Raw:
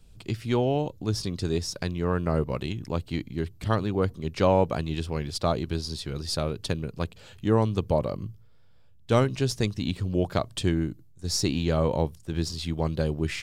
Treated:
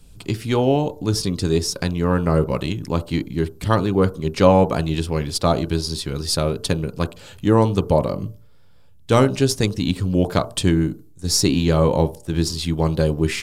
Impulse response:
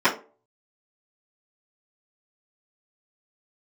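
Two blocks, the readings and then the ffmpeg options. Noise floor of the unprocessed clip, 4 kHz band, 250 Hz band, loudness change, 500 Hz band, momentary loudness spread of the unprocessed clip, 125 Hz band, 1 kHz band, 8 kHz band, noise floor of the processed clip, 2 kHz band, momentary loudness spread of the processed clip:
-52 dBFS, +7.5 dB, +8.0 dB, +7.5 dB, +7.0 dB, 9 LU, +7.0 dB, +7.5 dB, +10.0 dB, -46 dBFS, +7.0 dB, 8 LU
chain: -filter_complex "[0:a]equalizer=f=11000:t=o:w=1.1:g=6.5,asplit=2[s0][s1];[s1]asuperstop=centerf=2700:order=20:qfactor=0.89[s2];[1:a]atrim=start_sample=2205,lowpass=1300[s3];[s2][s3]afir=irnorm=-1:irlink=0,volume=0.0531[s4];[s0][s4]amix=inputs=2:normalize=0,volume=2.11"

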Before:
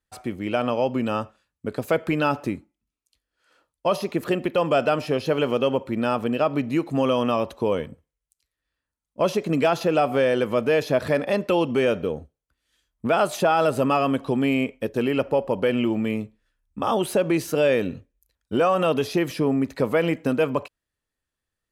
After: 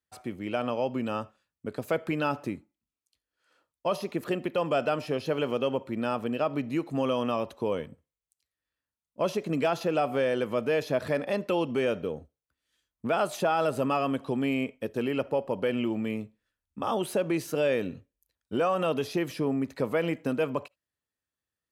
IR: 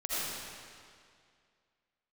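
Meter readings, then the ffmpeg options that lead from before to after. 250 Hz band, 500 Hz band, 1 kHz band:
-6.0 dB, -6.0 dB, -6.0 dB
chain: -filter_complex "[0:a]highpass=74,asplit=2[s0][s1];[1:a]atrim=start_sample=2205,atrim=end_sample=3528[s2];[s1][s2]afir=irnorm=-1:irlink=0,volume=0.0596[s3];[s0][s3]amix=inputs=2:normalize=0,volume=0.473"

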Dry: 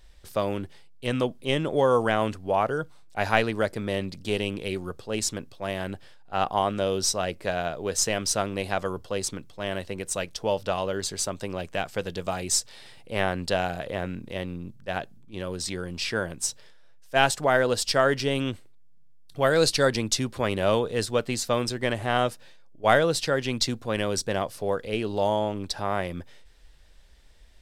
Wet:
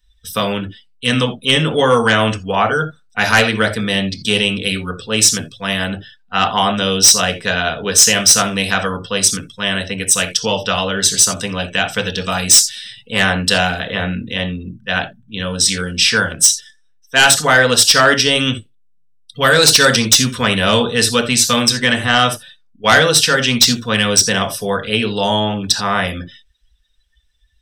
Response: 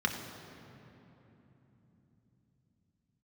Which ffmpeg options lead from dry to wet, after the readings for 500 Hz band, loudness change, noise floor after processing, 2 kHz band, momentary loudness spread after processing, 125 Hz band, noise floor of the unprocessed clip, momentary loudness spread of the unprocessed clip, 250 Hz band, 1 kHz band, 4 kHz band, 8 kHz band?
+6.5 dB, +13.0 dB, -53 dBFS, +15.0 dB, 12 LU, +10.0 dB, -48 dBFS, 11 LU, +10.5 dB, +9.5 dB, +17.5 dB, +18.0 dB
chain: -filter_complex "[0:a]crystalizer=i=5.5:c=0[s0];[1:a]atrim=start_sample=2205,afade=t=out:st=0.4:d=0.01,atrim=end_sample=18081,atrim=end_sample=3969[s1];[s0][s1]afir=irnorm=-1:irlink=0,aeval=exprs='2.24*(cos(1*acos(clip(val(0)/2.24,-1,1)))-cos(1*PI/2))+1*(cos(5*acos(clip(val(0)/2.24,-1,1)))-cos(5*PI/2))':c=same,afftdn=nr=27:nf=-28,volume=0.398"

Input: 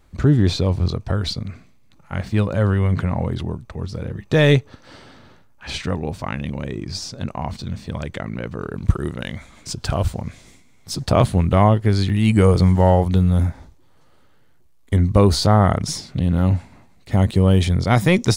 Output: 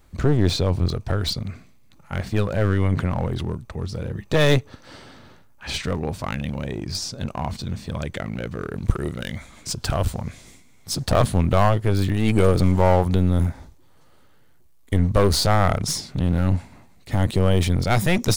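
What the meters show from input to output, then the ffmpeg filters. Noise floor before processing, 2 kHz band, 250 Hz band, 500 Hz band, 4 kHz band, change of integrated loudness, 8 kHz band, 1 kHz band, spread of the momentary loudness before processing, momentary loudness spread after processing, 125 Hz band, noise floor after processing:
-51 dBFS, -1.0 dB, -4.0 dB, -2.0 dB, 0.0 dB, -3.0 dB, +2.0 dB, -2.0 dB, 15 LU, 12 LU, -3.5 dB, -51 dBFS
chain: -af "aeval=exprs='clip(val(0),-1,0.0708)':c=same,highshelf=f=9300:g=7"

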